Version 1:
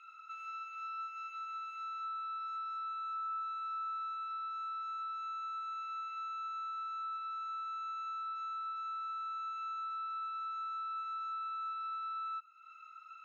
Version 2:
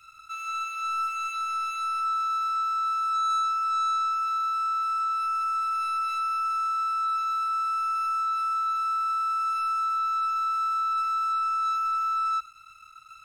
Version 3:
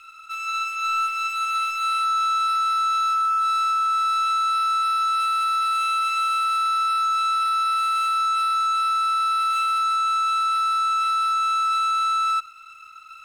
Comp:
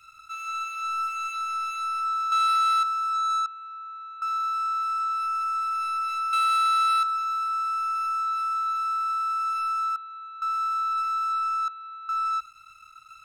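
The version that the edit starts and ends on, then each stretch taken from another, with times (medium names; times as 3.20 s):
2
2.32–2.83 s: from 3
3.46–4.22 s: from 1
6.33–7.03 s: from 3
9.96–10.42 s: from 1
11.68–12.09 s: from 1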